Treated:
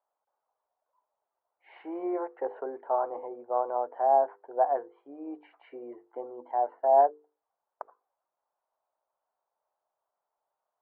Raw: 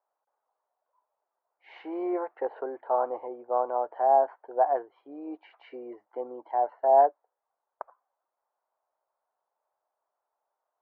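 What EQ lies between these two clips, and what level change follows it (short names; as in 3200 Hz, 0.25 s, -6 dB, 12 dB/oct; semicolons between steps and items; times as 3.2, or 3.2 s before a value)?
air absorption 380 m; notches 50/100/150/200/250/300/350/400/450/500 Hz; 0.0 dB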